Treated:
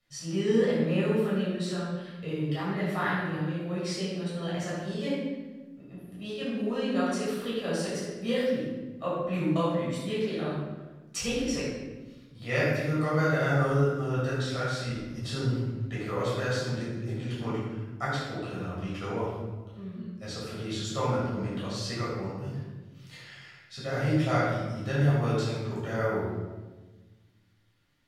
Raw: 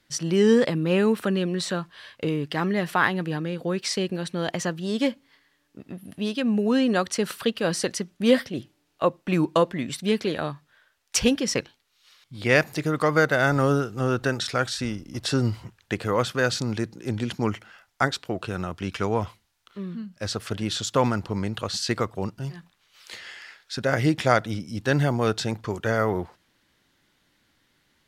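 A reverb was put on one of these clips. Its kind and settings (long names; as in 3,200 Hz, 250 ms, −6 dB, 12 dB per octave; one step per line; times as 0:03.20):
rectangular room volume 850 cubic metres, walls mixed, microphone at 6.4 metres
level −18.5 dB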